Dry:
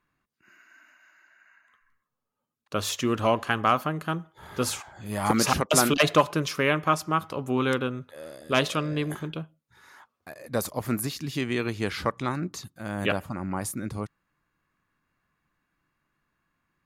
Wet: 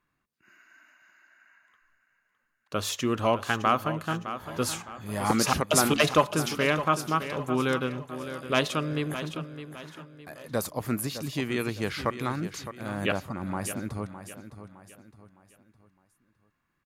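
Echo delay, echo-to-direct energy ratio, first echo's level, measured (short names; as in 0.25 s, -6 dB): 0.611 s, -11.0 dB, -11.5 dB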